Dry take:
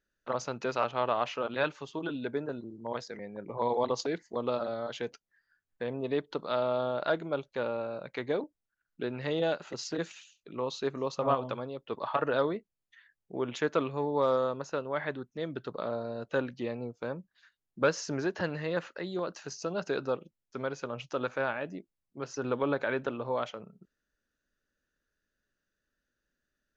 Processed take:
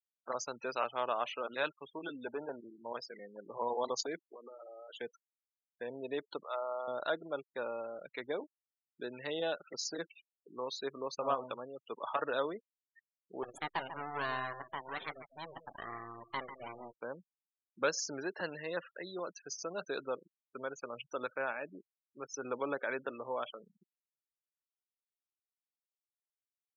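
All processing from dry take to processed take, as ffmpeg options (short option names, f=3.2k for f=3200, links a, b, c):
-filter_complex "[0:a]asettb=1/sr,asplit=3[a][b][c];[a]atrim=end=2.264[d];[b]atrim=start=2.26:end=2.82,asetpts=PTS-STARTPTS,afade=t=in:d=0.004:c=qsin,afade=t=out:st=0.556:d=0.004:c=qsin,equalizer=f=820:w=1.9:g=11.5,asoftclip=type=hard:threshold=-25.5dB[e];[c]atrim=start=2.816[f];[d][e]acrossfade=d=0.004:c1=hsin:c2=qsin[g];[g][f]acrossfade=d=0.004:c1=qsin:c2=hsin,asettb=1/sr,asplit=3[h][i][j];[h]atrim=end=4.244[k];[i]atrim=start=4.24:end=5.01,asetpts=PTS-STARTPTS,afade=t=in:d=0.004:c=qsin,afade=t=out:st=0.766:d=0.004:c=qsin,highpass=f=260:w=0.5412,highpass=f=260:w=1.3066,acompressor=threshold=-40dB:ratio=12:attack=3.2:release=140:knee=1:detection=peak[l];[j]atrim=start=5.006[m];[k][l]acrossfade=d=0.004:c1=hsin:c2=qsin[n];[n][m]acrossfade=d=0.004:c1=qsin:c2=hsin,asettb=1/sr,asplit=3[o][p][q];[o]atrim=end=6.434[r];[p]atrim=start=6.43:end=6.88,asetpts=PTS-STARTPTS,afade=t=in:d=0.004:c=qsin,afade=t=out:st=0.446:d=0.004:c=qsin,highpass=610,lowpass=2.4k,bandreject=f=1.6k:w=7.1[s];[q]atrim=start=6.876[t];[r][s]acrossfade=d=0.004:c1=hsin:c2=qsin[u];[u][t]acrossfade=d=0.004:c1=qsin:c2=hsin,asettb=1/sr,asplit=3[v][w][x];[v]atrim=end=13.434[y];[w]atrim=start=13.43:end=16.94,asetpts=PTS-STARTPTS,afade=t=in:d=0.004:c=qsin,afade=t=out:st=3.506:d=0.004:c=qsin,aeval=exprs='abs(val(0))':c=same,aecho=1:1:146:0.299,atrim=end_sample=154791[z];[x]atrim=start=16.936[aa];[y][z]acrossfade=d=0.004:c1=hsin:c2=qsin[ab];[ab][aa]acrossfade=d=0.004:c1=qsin:c2=hsin,lowshelf=f=110:g=-9.5,afftfilt=real='re*gte(hypot(re,im),0.0112)':imag='im*gte(hypot(re,im),0.0112)':win_size=1024:overlap=0.75,aemphasis=mode=production:type=bsi,volume=-4.5dB"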